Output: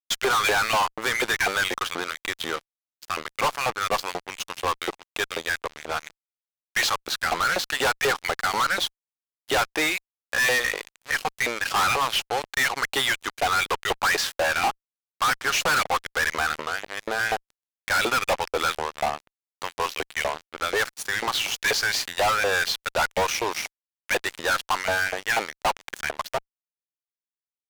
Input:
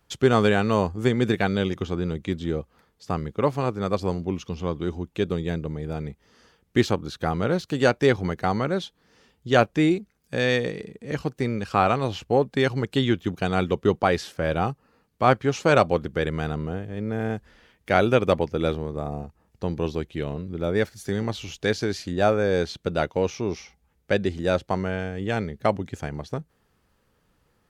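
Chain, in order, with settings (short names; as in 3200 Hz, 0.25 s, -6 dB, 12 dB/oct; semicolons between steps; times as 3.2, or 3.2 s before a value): LFO high-pass saw up 4.1 Hz 670–2400 Hz; fuzz box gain 35 dB, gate -42 dBFS; gain -6 dB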